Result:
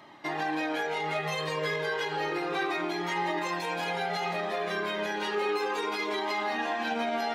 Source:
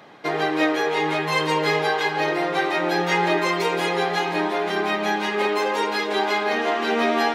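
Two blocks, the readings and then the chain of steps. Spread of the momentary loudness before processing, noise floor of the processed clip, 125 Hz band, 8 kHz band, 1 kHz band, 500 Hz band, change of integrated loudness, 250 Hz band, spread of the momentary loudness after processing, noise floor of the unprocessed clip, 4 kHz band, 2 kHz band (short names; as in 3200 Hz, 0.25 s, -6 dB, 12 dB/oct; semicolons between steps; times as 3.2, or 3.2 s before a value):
3 LU, -34 dBFS, -8.5 dB, -8.5 dB, -8.0 dB, -9.0 dB, -8.5 dB, -9.5 dB, 1 LU, -27 dBFS, -8.0 dB, -8.5 dB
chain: limiter -17.5 dBFS, peak gain reduction 8.5 dB; cascading flanger falling 0.32 Hz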